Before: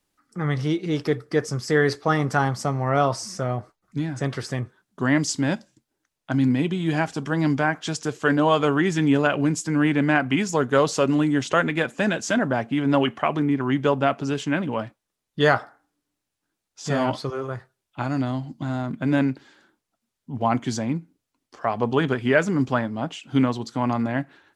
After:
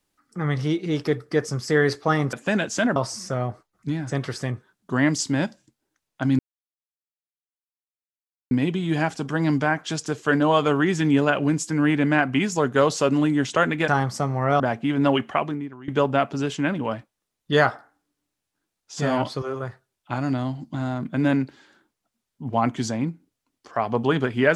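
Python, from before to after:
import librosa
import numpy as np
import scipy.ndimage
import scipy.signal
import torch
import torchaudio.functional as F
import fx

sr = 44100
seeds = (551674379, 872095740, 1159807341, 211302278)

y = fx.edit(x, sr, fx.swap(start_s=2.33, length_s=0.72, other_s=11.85, other_length_s=0.63),
    fx.insert_silence(at_s=6.48, length_s=2.12),
    fx.fade_out_to(start_s=13.25, length_s=0.51, curve='qua', floor_db=-20.0), tone=tone)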